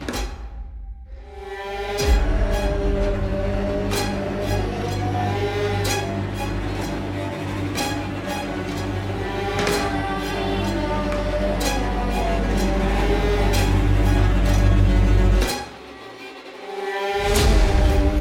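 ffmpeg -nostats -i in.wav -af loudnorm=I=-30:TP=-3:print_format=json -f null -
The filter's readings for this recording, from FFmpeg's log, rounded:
"input_i" : "-22.2",
"input_tp" : "-5.5",
"input_lra" : "4.9",
"input_thresh" : "-32.8",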